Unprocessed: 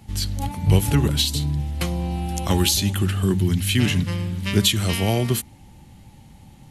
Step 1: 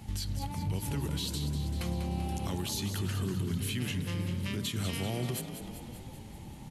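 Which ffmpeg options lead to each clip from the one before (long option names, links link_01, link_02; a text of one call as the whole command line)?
ffmpeg -i in.wav -filter_complex "[0:a]acompressor=threshold=-37dB:ratio=2,alimiter=level_in=1.5dB:limit=-24dB:level=0:latency=1:release=74,volume=-1.5dB,asplit=2[link_01][link_02];[link_02]asplit=8[link_03][link_04][link_05][link_06][link_07][link_08][link_09][link_10];[link_03]adelay=194,afreqshift=35,volume=-9dB[link_11];[link_04]adelay=388,afreqshift=70,volume=-13dB[link_12];[link_05]adelay=582,afreqshift=105,volume=-17dB[link_13];[link_06]adelay=776,afreqshift=140,volume=-21dB[link_14];[link_07]adelay=970,afreqshift=175,volume=-25.1dB[link_15];[link_08]adelay=1164,afreqshift=210,volume=-29.1dB[link_16];[link_09]adelay=1358,afreqshift=245,volume=-33.1dB[link_17];[link_10]adelay=1552,afreqshift=280,volume=-37.1dB[link_18];[link_11][link_12][link_13][link_14][link_15][link_16][link_17][link_18]amix=inputs=8:normalize=0[link_19];[link_01][link_19]amix=inputs=2:normalize=0" out.wav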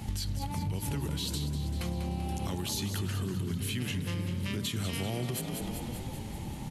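ffmpeg -i in.wav -af "acompressor=threshold=-37dB:ratio=6,volume=7dB" out.wav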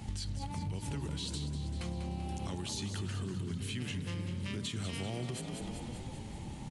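ffmpeg -i in.wav -af "aresample=22050,aresample=44100,volume=-4.5dB" out.wav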